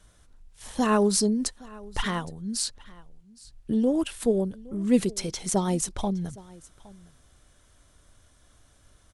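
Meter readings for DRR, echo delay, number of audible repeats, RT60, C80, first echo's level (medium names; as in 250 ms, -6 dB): no reverb, 815 ms, 1, no reverb, no reverb, -22.0 dB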